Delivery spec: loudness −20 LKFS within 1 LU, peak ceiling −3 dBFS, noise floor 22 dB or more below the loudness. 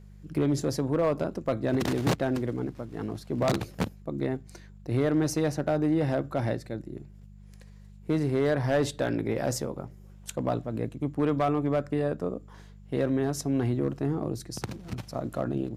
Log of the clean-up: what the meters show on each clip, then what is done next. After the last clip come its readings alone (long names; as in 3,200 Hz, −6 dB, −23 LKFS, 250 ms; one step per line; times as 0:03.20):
share of clipped samples 0.5%; peaks flattened at −17.5 dBFS; mains hum 50 Hz; hum harmonics up to 200 Hz; level of the hum −47 dBFS; integrated loudness −29.0 LKFS; sample peak −17.5 dBFS; target loudness −20.0 LKFS
→ clipped peaks rebuilt −17.5 dBFS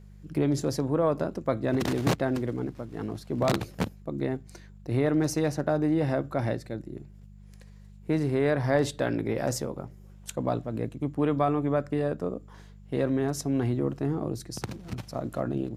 share of clipped samples 0.0%; mains hum 50 Hz; hum harmonics up to 200 Hz; level of the hum −47 dBFS
→ hum removal 50 Hz, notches 4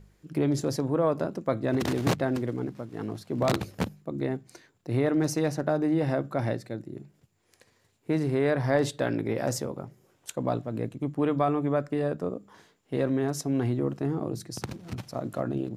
mains hum none found; integrated loudness −29.0 LKFS; sample peak −8.5 dBFS; target loudness −20.0 LKFS
→ level +9 dB
brickwall limiter −3 dBFS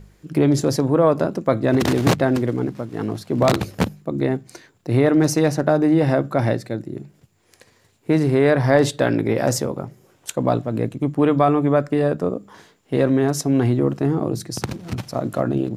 integrated loudness −20.0 LKFS; sample peak −3.0 dBFS; background noise floor −59 dBFS